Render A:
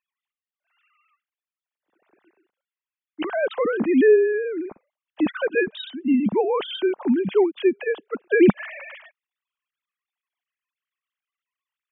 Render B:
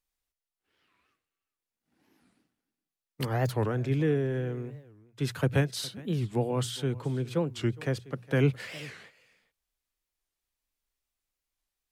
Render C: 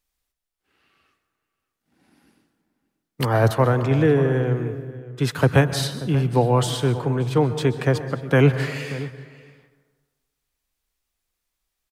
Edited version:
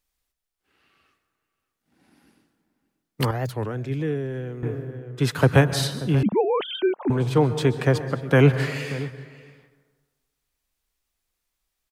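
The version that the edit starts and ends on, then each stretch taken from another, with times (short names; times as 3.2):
C
3.31–4.63 from B
6.23–7.1 from A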